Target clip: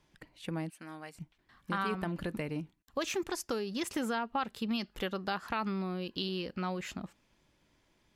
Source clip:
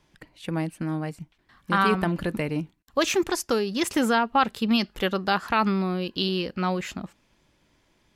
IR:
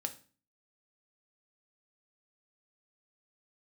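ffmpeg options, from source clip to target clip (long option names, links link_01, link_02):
-filter_complex "[0:a]asettb=1/sr,asplit=3[link_01][link_02][link_03];[link_01]atrim=end=0.704[link_04];[link_02]atrim=start=0.7:end=1.15,asetpts=PTS-STARTPTS,afade=type=in:duration=0.004:curve=qsin,afade=type=out:start_time=0.446:duration=0.004:curve=qsin,highpass=frequency=1300:poles=1[link_05];[link_03]atrim=start=1.146[link_06];[link_04][link_05]acrossfade=duration=0.004:curve1=hsin:curve2=qsin[link_07];[link_07][link_06]acrossfade=duration=0.004:curve1=qsin:curve2=hsin,acompressor=threshold=-29dB:ratio=2,volume=-5.5dB"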